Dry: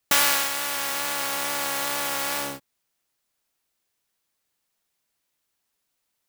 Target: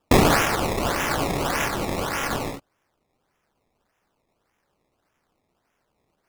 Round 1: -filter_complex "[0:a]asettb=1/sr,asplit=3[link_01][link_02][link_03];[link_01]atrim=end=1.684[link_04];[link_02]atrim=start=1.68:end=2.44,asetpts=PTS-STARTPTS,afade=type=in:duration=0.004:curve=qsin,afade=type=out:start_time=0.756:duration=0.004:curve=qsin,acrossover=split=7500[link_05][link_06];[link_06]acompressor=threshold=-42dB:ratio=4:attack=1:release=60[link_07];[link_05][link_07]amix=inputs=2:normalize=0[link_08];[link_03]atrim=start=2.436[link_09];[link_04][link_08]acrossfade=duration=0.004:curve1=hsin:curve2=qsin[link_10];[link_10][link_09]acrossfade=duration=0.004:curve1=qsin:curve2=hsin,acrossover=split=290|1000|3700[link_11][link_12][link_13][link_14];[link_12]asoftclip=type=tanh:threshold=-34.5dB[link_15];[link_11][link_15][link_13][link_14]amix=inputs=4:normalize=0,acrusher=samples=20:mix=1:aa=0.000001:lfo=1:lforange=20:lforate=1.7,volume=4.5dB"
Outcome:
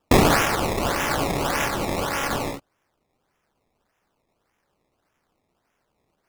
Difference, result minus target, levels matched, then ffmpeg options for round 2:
soft clipping: distortion −7 dB
-filter_complex "[0:a]asettb=1/sr,asplit=3[link_01][link_02][link_03];[link_01]atrim=end=1.684[link_04];[link_02]atrim=start=1.68:end=2.44,asetpts=PTS-STARTPTS,afade=type=in:duration=0.004:curve=qsin,afade=type=out:start_time=0.756:duration=0.004:curve=qsin,acrossover=split=7500[link_05][link_06];[link_06]acompressor=threshold=-42dB:ratio=4:attack=1:release=60[link_07];[link_05][link_07]amix=inputs=2:normalize=0[link_08];[link_03]atrim=start=2.436[link_09];[link_04][link_08]acrossfade=duration=0.004:curve1=hsin:curve2=qsin[link_10];[link_10][link_09]acrossfade=duration=0.004:curve1=qsin:curve2=hsin,acrossover=split=290|1000|3700[link_11][link_12][link_13][link_14];[link_12]asoftclip=type=tanh:threshold=-45.5dB[link_15];[link_11][link_15][link_13][link_14]amix=inputs=4:normalize=0,acrusher=samples=20:mix=1:aa=0.000001:lfo=1:lforange=20:lforate=1.7,volume=4.5dB"

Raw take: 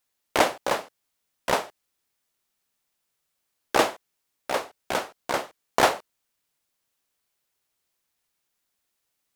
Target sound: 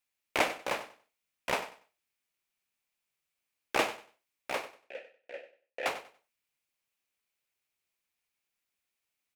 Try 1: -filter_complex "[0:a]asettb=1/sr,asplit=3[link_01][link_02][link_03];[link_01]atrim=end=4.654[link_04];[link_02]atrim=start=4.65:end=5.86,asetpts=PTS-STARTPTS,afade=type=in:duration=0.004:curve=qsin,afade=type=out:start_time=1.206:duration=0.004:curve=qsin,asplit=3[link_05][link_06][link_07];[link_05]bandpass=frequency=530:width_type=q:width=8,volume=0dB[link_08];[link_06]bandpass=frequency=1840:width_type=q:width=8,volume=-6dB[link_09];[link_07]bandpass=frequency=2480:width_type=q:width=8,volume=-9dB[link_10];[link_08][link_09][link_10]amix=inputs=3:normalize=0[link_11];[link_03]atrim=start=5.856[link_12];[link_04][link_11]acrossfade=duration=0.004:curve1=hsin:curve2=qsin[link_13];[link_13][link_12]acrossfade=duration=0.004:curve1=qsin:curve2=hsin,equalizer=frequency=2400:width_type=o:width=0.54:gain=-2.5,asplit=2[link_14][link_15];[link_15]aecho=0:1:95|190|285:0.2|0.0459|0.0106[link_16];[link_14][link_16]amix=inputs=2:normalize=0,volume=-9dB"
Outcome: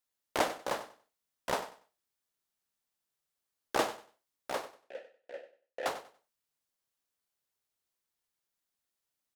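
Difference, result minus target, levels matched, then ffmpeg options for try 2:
2,000 Hz band −3.5 dB
-filter_complex "[0:a]asettb=1/sr,asplit=3[link_01][link_02][link_03];[link_01]atrim=end=4.654[link_04];[link_02]atrim=start=4.65:end=5.86,asetpts=PTS-STARTPTS,afade=type=in:duration=0.004:curve=qsin,afade=type=out:start_time=1.206:duration=0.004:curve=qsin,asplit=3[link_05][link_06][link_07];[link_05]bandpass=frequency=530:width_type=q:width=8,volume=0dB[link_08];[link_06]bandpass=frequency=1840:width_type=q:width=8,volume=-6dB[link_09];[link_07]bandpass=frequency=2480:width_type=q:width=8,volume=-9dB[link_10];[link_08][link_09][link_10]amix=inputs=3:normalize=0[link_11];[link_03]atrim=start=5.856[link_12];[link_04][link_11]acrossfade=duration=0.004:curve1=hsin:curve2=qsin[link_13];[link_13][link_12]acrossfade=duration=0.004:curve1=qsin:curve2=hsin,equalizer=frequency=2400:width_type=o:width=0.54:gain=9,asplit=2[link_14][link_15];[link_15]aecho=0:1:95|190|285:0.2|0.0459|0.0106[link_16];[link_14][link_16]amix=inputs=2:normalize=0,volume=-9dB"

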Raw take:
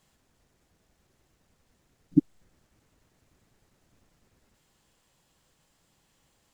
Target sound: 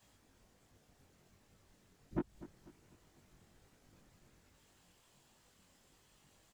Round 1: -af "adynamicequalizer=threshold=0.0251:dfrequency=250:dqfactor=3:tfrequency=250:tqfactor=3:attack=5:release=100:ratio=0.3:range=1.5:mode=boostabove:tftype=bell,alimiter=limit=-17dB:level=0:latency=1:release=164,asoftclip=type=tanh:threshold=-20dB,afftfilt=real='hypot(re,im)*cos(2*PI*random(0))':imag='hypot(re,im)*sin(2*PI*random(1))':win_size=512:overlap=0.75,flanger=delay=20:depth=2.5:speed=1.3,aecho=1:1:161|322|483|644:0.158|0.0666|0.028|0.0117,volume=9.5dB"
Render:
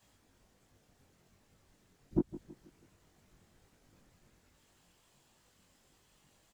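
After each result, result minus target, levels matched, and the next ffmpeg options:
soft clipping: distortion −11 dB; echo 86 ms early
-af "adynamicequalizer=threshold=0.0251:dfrequency=250:dqfactor=3:tfrequency=250:tqfactor=3:attack=5:release=100:ratio=0.3:range=1.5:mode=boostabove:tftype=bell,alimiter=limit=-17dB:level=0:latency=1:release=164,asoftclip=type=tanh:threshold=-30dB,afftfilt=real='hypot(re,im)*cos(2*PI*random(0))':imag='hypot(re,im)*sin(2*PI*random(1))':win_size=512:overlap=0.75,flanger=delay=20:depth=2.5:speed=1.3,aecho=1:1:161|322|483|644:0.158|0.0666|0.028|0.0117,volume=9.5dB"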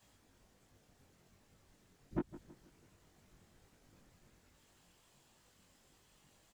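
echo 86 ms early
-af "adynamicequalizer=threshold=0.0251:dfrequency=250:dqfactor=3:tfrequency=250:tqfactor=3:attack=5:release=100:ratio=0.3:range=1.5:mode=boostabove:tftype=bell,alimiter=limit=-17dB:level=0:latency=1:release=164,asoftclip=type=tanh:threshold=-30dB,afftfilt=real='hypot(re,im)*cos(2*PI*random(0))':imag='hypot(re,im)*sin(2*PI*random(1))':win_size=512:overlap=0.75,flanger=delay=20:depth=2.5:speed=1.3,aecho=1:1:247|494|741|988:0.158|0.0666|0.028|0.0117,volume=9.5dB"

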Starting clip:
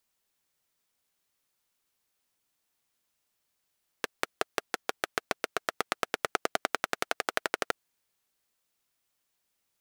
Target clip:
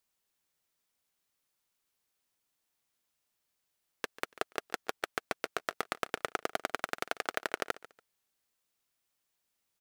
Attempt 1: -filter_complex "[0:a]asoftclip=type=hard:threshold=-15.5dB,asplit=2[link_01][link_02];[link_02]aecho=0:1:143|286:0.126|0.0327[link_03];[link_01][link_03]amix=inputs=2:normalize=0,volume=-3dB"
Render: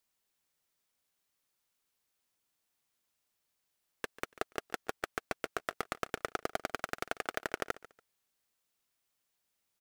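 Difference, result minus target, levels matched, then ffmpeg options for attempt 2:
hard clipping: distortion +9 dB
-filter_complex "[0:a]asoftclip=type=hard:threshold=-9.5dB,asplit=2[link_01][link_02];[link_02]aecho=0:1:143|286:0.126|0.0327[link_03];[link_01][link_03]amix=inputs=2:normalize=0,volume=-3dB"

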